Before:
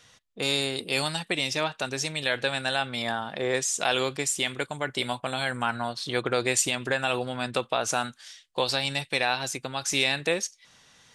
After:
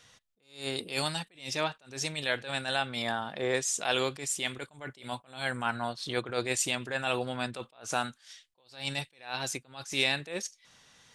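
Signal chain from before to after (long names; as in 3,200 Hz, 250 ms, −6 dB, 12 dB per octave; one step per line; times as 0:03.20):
level that may rise only so fast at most 150 dB per second
level −2.5 dB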